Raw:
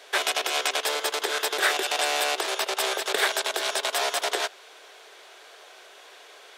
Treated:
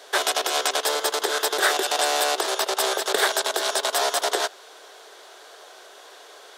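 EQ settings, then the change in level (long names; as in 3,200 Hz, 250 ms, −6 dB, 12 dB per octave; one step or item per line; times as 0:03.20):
parametric band 2,400 Hz −8.5 dB 0.72 octaves
+4.5 dB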